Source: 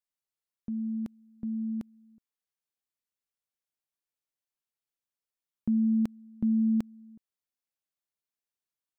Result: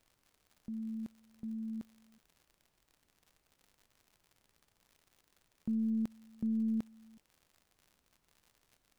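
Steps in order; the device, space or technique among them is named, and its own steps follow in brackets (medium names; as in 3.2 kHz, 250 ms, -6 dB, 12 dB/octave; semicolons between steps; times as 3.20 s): record under a worn stylus (tracing distortion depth 0.49 ms; crackle 100 per s -44 dBFS; pink noise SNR 36 dB); trim -7.5 dB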